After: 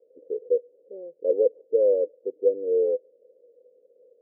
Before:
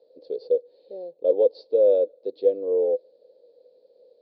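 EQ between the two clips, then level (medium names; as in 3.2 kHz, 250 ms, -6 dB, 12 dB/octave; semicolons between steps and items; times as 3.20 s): four-pole ladder low-pass 540 Hz, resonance 45%; +3.0 dB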